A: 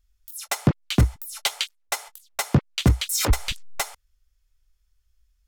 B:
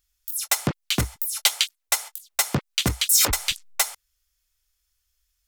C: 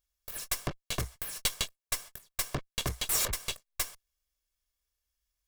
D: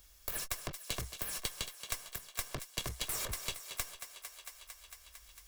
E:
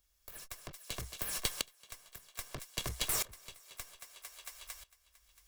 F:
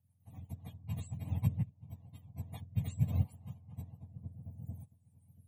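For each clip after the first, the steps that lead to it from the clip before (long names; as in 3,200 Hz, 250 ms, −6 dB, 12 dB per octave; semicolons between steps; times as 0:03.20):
spectral tilt +2.5 dB per octave
lower of the sound and its delayed copy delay 1.8 ms; level −9 dB
downward compressor 4 to 1, threshold −37 dBFS, peak gain reduction 11.5 dB; feedback echo with a high-pass in the loop 226 ms, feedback 60%, high-pass 340 Hz, level −12 dB; multiband upward and downward compressor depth 70%; level +2 dB
tremolo with a ramp in dB swelling 0.62 Hz, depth 21 dB; level +5.5 dB
frequency axis turned over on the octave scale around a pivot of 690 Hz; phaser with its sweep stopped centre 1,400 Hz, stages 6; rotating-speaker cabinet horn 7.5 Hz, later 0.7 Hz, at 0:00.71; level +4 dB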